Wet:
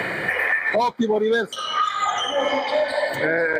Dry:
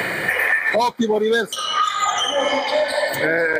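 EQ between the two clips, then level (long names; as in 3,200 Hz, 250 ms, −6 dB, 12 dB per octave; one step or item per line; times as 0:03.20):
low-pass filter 3,000 Hz 6 dB per octave
−1.5 dB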